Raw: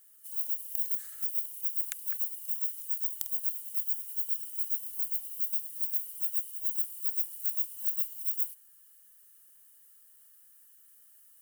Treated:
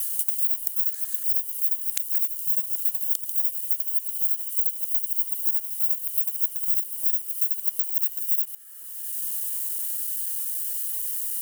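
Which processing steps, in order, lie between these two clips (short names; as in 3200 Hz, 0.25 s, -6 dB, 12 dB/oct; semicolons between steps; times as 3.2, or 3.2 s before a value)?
local time reversal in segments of 95 ms; three-band squash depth 100%; gain +7 dB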